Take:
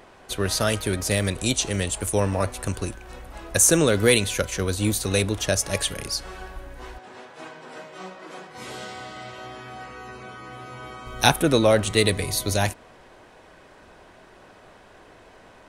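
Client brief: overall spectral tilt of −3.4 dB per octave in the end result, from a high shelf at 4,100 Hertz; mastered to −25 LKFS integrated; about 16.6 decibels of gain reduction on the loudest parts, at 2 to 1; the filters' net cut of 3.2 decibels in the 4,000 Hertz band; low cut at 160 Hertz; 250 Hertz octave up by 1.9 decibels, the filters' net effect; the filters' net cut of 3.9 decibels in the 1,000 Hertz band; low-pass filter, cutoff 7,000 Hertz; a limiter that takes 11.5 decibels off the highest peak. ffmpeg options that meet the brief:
ffmpeg -i in.wav -af "highpass=160,lowpass=7000,equalizer=frequency=250:width_type=o:gain=4,equalizer=frequency=1000:width_type=o:gain=-6,equalizer=frequency=4000:width_type=o:gain=-7,highshelf=frequency=4100:gain=7,acompressor=threshold=-46dB:ratio=2,volume=18dB,alimiter=limit=-12dB:level=0:latency=1" out.wav

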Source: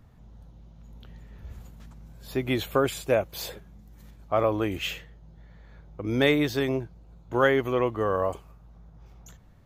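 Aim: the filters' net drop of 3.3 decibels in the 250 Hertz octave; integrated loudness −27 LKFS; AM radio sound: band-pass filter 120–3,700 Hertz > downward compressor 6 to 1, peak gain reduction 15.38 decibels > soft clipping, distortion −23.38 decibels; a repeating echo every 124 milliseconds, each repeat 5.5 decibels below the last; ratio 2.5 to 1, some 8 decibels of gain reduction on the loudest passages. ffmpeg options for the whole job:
ffmpeg -i in.wav -af "equalizer=frequency=250:width_type=o:gain=-4,acompressor=threshold=-30dB:ratio=2.5,highpass=120,lowpass=3700,aecho=1:1:124|248|372|496|620|744|868:0.531|0.281|0.149|0.079|0.0419|0.0222|0.0118,acompressor=threshold=-41dB:ratio=6,asoftclip=threshold=-31dB,volume=20dB" out.wav

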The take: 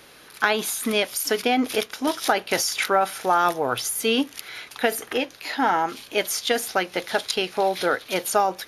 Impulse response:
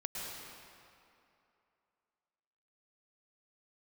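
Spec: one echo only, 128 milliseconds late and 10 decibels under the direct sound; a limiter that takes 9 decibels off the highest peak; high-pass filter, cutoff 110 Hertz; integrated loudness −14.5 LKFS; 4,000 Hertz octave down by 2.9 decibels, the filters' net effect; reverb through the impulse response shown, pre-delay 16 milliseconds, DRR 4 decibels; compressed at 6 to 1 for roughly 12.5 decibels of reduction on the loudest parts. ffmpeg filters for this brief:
-filter_complex "[0:a]highpass=110,equalizer=frequency=4000:width_type=o:gain=-4,acompressor=threshold=-31dB:ratio=6,alimiter=level_in=1.5dB:limit=-24dB:level=0:latency=1,volume=-1.5dB,aecho=1:1:128:0.316,asplit=2[link_01][link_02];[1:a]atrim=start_sample=2205,adelay=16[link_03];[link_02][link_03]afir=irnorm=-1:irlink=0,volume=-6dB[link_04];[link_01][link_04]amix=inputs=2:normalize=0,volume=20dB"

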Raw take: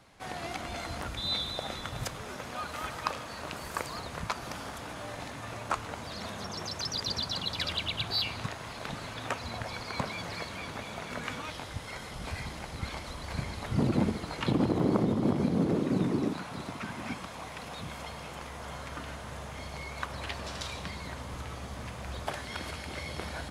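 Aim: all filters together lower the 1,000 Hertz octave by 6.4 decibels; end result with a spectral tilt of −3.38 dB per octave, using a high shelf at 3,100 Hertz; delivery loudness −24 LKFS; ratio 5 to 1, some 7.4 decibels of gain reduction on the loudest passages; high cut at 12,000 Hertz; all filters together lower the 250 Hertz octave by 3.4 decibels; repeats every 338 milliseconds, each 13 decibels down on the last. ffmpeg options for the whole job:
ffmpeg -i in.wav -af "lowpass=12000,equalizer=frequency=250:width_type=o:gain=-4,equalizer=frequency=1000:width_type=o:gain=-9,highshelf=frequency=3100:gain=5,acompressor=threshold=-33dB:ratio=5,aecho=1:1:338|676|1014:0.224|0.0493|0.0108,volume=14.5dB" out.wav

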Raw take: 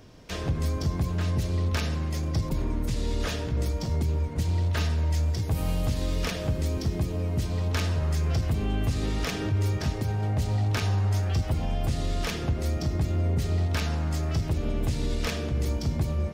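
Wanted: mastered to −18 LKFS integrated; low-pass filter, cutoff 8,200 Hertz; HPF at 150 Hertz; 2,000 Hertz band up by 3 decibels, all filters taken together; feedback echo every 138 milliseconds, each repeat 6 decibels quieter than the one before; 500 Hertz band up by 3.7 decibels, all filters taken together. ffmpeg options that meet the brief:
ffmpeg -i in.wav -af "highpass=150,lowpass=8200,equalizer=frequency=500:width_type=o:gain=4.5,equalizer=frequency=2000:width_type=o:gain=3.5,aecho=1:1:138|276|414|552|690|828:0.501|0.251|0.125|0.0626|0.0313|0.0157,volume=12.5dB" out.wav

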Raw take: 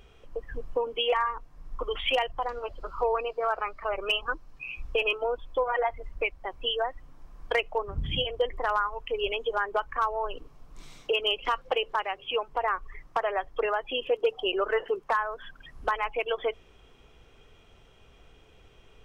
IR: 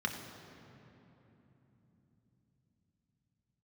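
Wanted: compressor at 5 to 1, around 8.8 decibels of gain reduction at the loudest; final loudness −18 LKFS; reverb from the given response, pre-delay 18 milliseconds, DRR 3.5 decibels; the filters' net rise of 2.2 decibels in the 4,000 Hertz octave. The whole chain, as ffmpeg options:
-filter_complex "[0:a]equalizer=frequency=4000:width_type=o:gain=3.5,acompressor=threshold=-31dB:ratio=5,asplit=2[link_01][link_02];[1:a]atrim=start_sample=2205,adelay=18[link_03];[link_02][link_03]afir=irnorm=-1:irlink=0,volume=-8.5dB[link_04];[link_01][link_04]amix=inputs=2:normalize=0,volume=16.5dB"

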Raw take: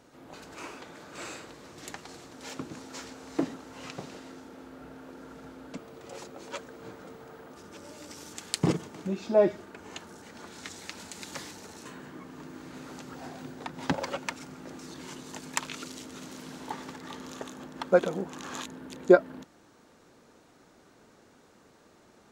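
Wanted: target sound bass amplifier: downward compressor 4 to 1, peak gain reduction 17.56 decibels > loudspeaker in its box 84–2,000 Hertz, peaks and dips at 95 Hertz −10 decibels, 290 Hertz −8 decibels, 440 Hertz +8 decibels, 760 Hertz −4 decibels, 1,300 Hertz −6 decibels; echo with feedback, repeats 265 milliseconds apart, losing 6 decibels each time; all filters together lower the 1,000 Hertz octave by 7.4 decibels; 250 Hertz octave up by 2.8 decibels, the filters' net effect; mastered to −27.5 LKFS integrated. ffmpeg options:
ffmpeg -i in.wav -af "equalizer=frequency=250:width_type=o:gain=7.5,equalizer=frequency=1000:width_type=o:gain=-7,aecho=1:1:265|530|795|1060|1325|1590:0.501|0.251|0.125|0.0626|0.0313|0.0157,acompressor=threshold=-31dB:ratio=4,highpass=frequency=84:width=0.5412,highpass=frequency=84:width=1.3066,equalizer=frequency=95:width_type=q:width=4:gain=-10,equalizer=frequency=290:width_type=q:width=4:gain=-8,equalizer=frequency=440:width_type=q:width=4:gain=8,equalizer=frequency=760:width_type=q:width=4:gain=-4,equalizer=frequency=1300:width_type=q:width=4:gain=-6,lowpass=frequency=2000:width=0.5412,lowpass=frequency=2000:width=1.3066,volume=12dB" out.wav

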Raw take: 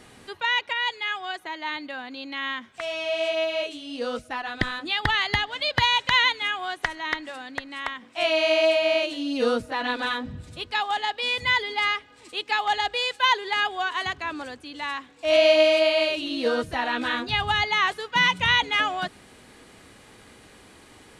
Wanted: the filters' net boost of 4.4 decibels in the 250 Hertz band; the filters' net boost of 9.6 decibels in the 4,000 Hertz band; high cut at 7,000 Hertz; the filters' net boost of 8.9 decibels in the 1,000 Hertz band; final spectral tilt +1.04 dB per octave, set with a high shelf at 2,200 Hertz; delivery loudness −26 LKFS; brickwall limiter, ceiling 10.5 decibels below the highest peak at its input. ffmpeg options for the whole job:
ffmpeg -i in.wav -af "lowpass=7000,equalizer=frequency=250:width_type=o:gain=4.5,equalizer=frequency=1000:width_type=o:gain=8.5,highshelf=frequency=2200:gain=7.5,equalizer=frequency=4000:width_type=o:gain=5.5,volume=-5.5dB,alimiter=limit=-15dB:level=0:latency=1" out.wav

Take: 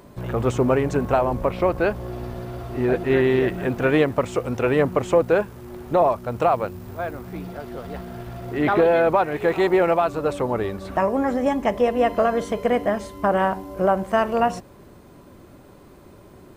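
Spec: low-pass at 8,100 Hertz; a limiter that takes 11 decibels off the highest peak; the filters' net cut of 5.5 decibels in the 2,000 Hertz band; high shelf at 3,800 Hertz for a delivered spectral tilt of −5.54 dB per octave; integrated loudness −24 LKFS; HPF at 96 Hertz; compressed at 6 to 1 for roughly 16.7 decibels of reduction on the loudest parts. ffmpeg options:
ffmpeg -i in.wav -af "highpass=96,lowpass=8100,equalizer=frequency=2000:width_type=o:gain=-6,highshelf=frequency=3800:gain=-6,acompressor=threshold=-33dB:ratio=6,volume=16dB,alimiter=limit=-14dB:level=0:latency=1" out.wav

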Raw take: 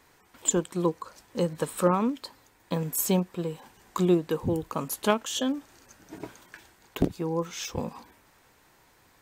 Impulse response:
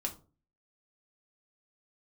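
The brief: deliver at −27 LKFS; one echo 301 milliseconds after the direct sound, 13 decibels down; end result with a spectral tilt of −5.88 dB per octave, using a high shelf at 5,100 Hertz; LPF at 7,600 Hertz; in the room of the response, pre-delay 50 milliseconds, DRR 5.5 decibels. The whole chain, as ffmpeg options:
-filter_complex "[0:a]lowpass=7600,highshelf=frequency=5100:gain=-5.5,aecho=1:1:301:0.224,asplit=2[link_01][link_02];[1:a]atrim=start_sample=2205,adelay=50[link_03];[link_02][link_03]afir=irnorm=-1:irlink=0,volume=-6.5dB[link_04];[link_01][link_04]amix=inputs=2:normalize=0,volume=0.5dB"

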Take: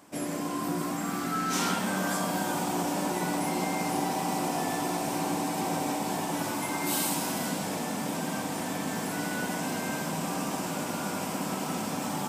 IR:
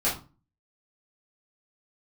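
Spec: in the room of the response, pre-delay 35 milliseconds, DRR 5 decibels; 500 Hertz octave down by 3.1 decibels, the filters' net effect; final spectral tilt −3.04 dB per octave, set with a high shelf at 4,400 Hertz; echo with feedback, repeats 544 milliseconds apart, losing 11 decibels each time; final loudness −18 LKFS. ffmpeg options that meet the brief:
-filter_complex "[0:a]equalizer=frequency=500:width_type=o:gain=-4.5,highshelf=frequency=4400:gain=6.5,aecho=1:1:544|1088|1632:0.282|0.0789|0.0221,asplit=2[link_01][link_02];[1:a]atrim=start_sample=2205,adelay=35[link_03];[link_02][link_03]afir=irnorm=-1:irlink=0,volume=-15.5dB[link_04];[link_01][link_04]amix=inputs=2:normalize=0,volume=9.5dB"

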